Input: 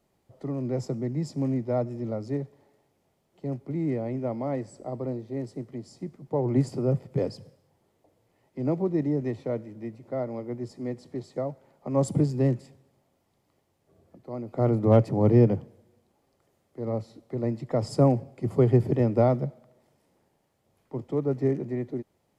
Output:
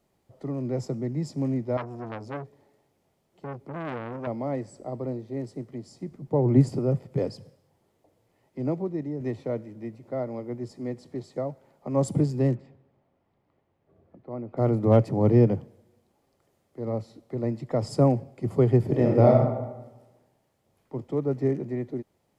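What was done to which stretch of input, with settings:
1.77–4.27 s: transformer saturation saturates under 1.5 kHz
6.11–6.79 s: bass shelf 380 Hz +6.5 dB
8.62–9.20 s: fade out quadratic, to -6.5 dB
12.55–14.57 s: low-pass 2.3 kHz
18.86–19.31 s: reverb throw, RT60 1.1 s, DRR -1 dB

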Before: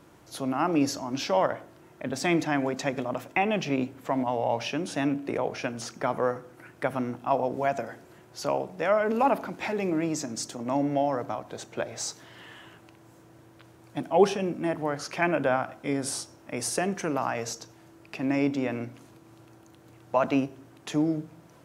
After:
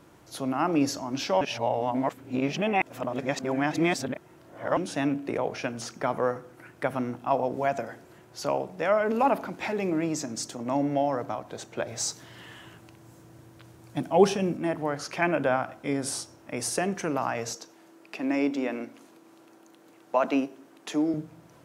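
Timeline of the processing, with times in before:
1.41–4.77 s: reverse
11.87–14.57 s: tone controls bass +5 dB, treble +4 dB
17.55–21.14 s: high-pass 210 Hz 24 dB/octave

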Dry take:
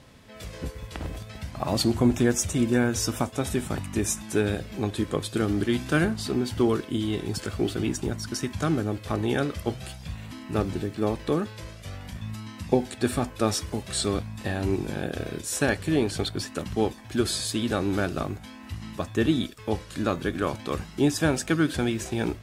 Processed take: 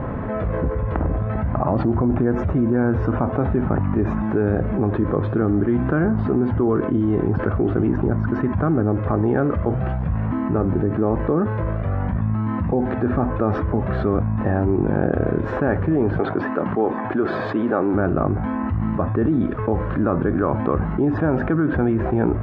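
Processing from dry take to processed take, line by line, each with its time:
16.19–17.94 s: Bessel high-pass 330 Hz
whole clip: low-pass 1.4 kHz 24 dB/octave; peak limiter -17 dBFS; level flattener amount 70%; trim +4.5 dB

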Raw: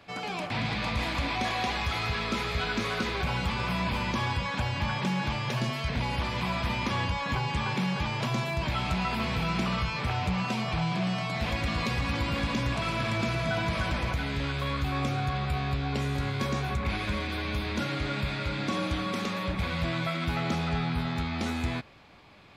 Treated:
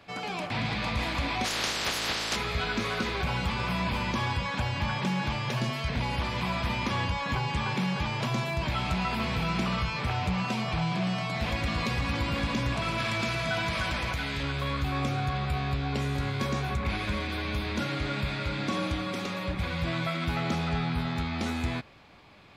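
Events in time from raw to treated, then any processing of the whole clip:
1.44–2.35 s: spectral peaks clipped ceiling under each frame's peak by 28 dB
12.98–14.43 s: tilt shelf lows -3.5 dB
18.92–19.87 s: comb of notches 220 Hz

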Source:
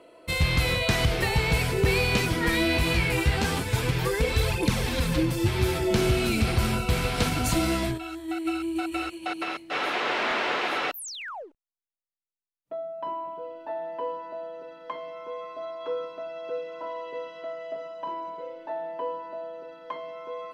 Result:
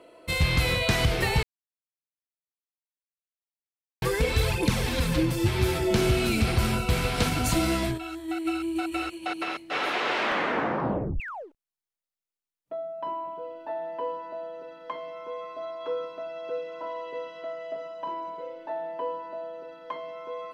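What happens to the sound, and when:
1.43–4.02 s: mute
10.20 s: tape stop 1.00 s

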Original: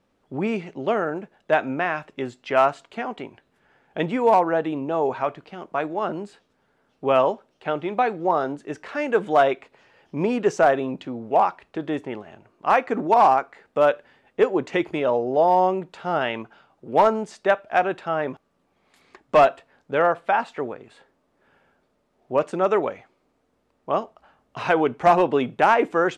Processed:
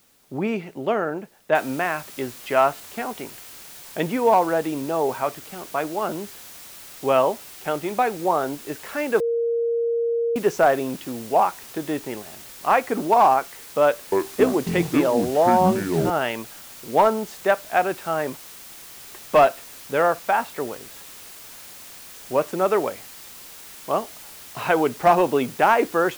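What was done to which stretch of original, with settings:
1.55 s: noise floor step -60 dB -42 dB
9.20–10.36 s: bleep 466 Hz -19.5 dBFS
13.85–16.10 s: ever faster or slower copies 271 ms, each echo -7 st, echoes 3

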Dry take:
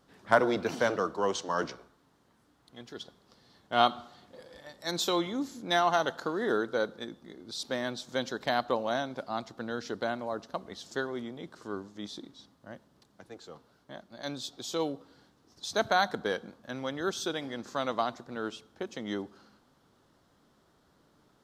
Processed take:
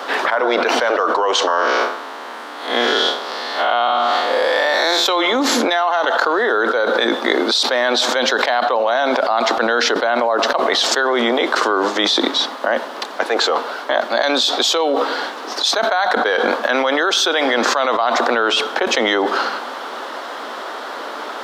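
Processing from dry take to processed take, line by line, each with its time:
1.47–5.06 s: spectral blur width 146 ms
whole clip: elliptic high-pass 230 Hz, stop band 40 dB; three-band isolator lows -20 dB, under 490 Hz, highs -14 dB, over 3.9 kHz; level flattener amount 100%; trim +3.5 dB

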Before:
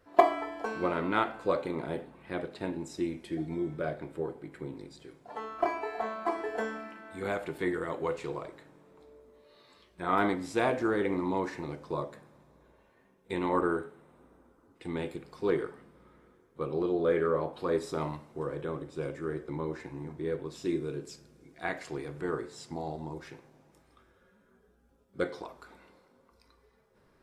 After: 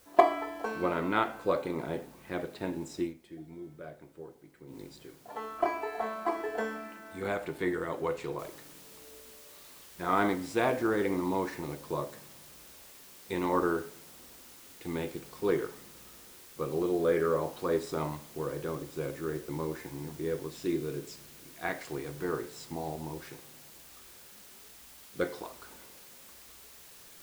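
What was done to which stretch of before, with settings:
3.02–4.79 s: dip -11.5 dB, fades 0.12 s
8.39 s: noise floor step -62 dB -53 dB

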